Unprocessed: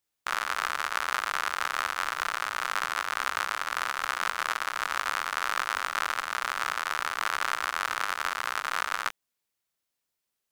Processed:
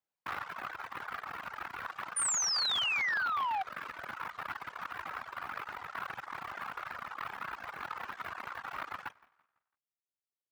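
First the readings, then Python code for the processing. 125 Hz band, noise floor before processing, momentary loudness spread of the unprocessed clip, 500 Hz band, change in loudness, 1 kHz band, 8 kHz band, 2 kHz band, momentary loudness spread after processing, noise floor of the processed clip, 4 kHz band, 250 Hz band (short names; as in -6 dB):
n/a, -84 dBFS, 1 LU, -9.0 dB, -6.0 dB, -8.0 dB, +1.5 dB, -8.0 dB, 14 LU, under -85 dBFS, -2.0 dB, -4.0 dB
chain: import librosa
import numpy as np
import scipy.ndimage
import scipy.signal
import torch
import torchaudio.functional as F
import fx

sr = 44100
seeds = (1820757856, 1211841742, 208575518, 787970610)

y = fx.tracing_dist(x, sr, depth_ms=0.11)
y = fx.high_shelf(y, sr, hz=3500.0, db=-11.5)
y = fx.echo_feedback(y, sr, ms=167, feedback_pct=38, wet_db=-14)
y = fx.whisperise(y, sr, seeds[0])
y = fx.rider(y, sr, range_db=10, speed_s=0.5)
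y = fx.peak_eq(y, sr, hz=810.0, db=5.0, octaves=0.75)
y = fx.spec_paint(y, sr, seeds[1], shape='fall', start_s=2.16, length_s=1.47, low_hz=740.0, high_hz=9600.0, level_db=-23.0)
y = scipy.signal.sosfilt(scipy.signal.butter(2, 62.0, 'highpass', fs=sr, output='sos'), y)
y = fx.dereverb_blind(y, sr, rt60_s=1.4)
y = fx.transformer_sat(y, sr, knee_hz=1700.0)
y = y * librosa.db_to_amplitude(-8.0)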